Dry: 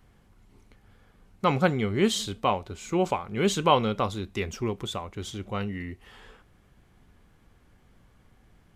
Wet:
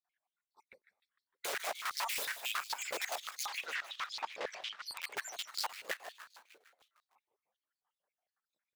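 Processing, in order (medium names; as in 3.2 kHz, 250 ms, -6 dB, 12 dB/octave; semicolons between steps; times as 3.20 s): random holes in the spectrogram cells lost 72%; reverb removal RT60 1.3 s; gate -55 dBFS, range -25 dB; harmonic-percussive split percussive +5 dB; peak limiter -21 dBFS, peak gain reduction 13 dB; integer overflow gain 32 dB; 3.47–4.85 s: distance through air 140 m; frequency-shifting echo 152 ms, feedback 64%, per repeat -110 Hz, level -11 dB; on a send at -21 dB: reverberation RT60 0.70 s, pre-delay 118 ms; on the sum: step-sequenced high-pass 11 Hz 490–4400 Hz; trim -2 dB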